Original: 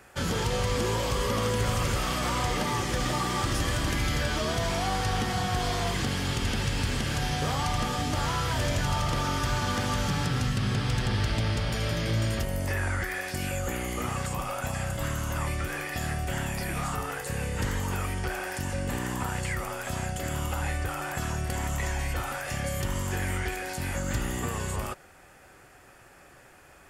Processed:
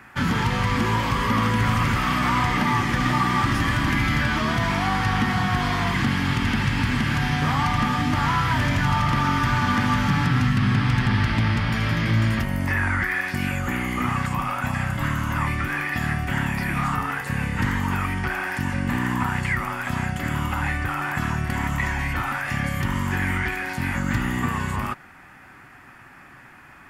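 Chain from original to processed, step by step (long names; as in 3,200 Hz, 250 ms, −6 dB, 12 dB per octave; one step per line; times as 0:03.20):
graphic EQ with 10 bands 125 Hz +6 dB, 250 Hz +11 dB, 500 Hz −9 dB, 1,000 Hz +9 dB, 2,000 Hz +9 dB, 8,000 Hz −6 dB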